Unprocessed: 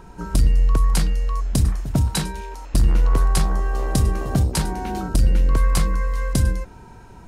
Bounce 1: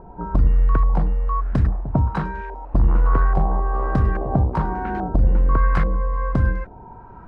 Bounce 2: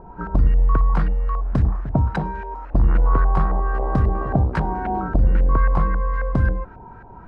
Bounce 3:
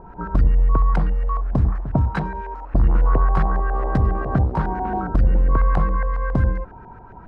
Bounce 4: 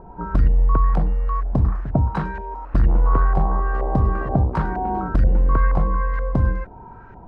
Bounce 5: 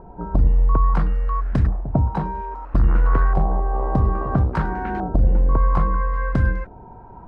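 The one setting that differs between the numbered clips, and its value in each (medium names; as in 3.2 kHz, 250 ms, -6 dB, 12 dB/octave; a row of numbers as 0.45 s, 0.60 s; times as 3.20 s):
LFO low-pass, rate: 1.2 Hz, 3.7 Hz, 7.3 Hz, 2.1 Hz, 0.6 Hz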